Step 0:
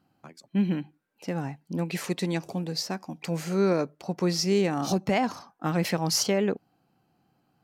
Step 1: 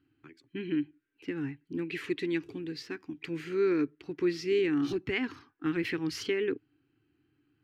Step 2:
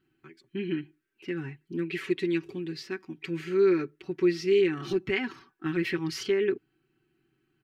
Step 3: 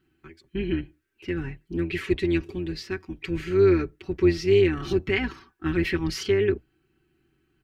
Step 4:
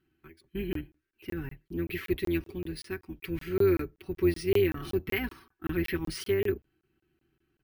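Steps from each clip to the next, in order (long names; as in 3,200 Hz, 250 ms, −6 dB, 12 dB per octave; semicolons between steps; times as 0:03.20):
drawn EQ curve 120 Hz 0 dB, 200 Hz −19 dB, 290 Hz +5 dB, 430 Hz −3 dB, 600 Hz −28 dB, 1,700 Hz 0 dB, 3,000 Hz −1 dB, 5,800 Hz −18 dB, 13,000 Hz −20 dB
comb filter 5.3 ms, depth 88%
sub-octave generator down 2 octaves, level −4 dB; level +3.5 dB
bad sample-rate conversion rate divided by 3×, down filtered, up hold; regular buffer underruns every 0.19 s, samples 1,024, zero, from 0:00.73; level −5.5 dB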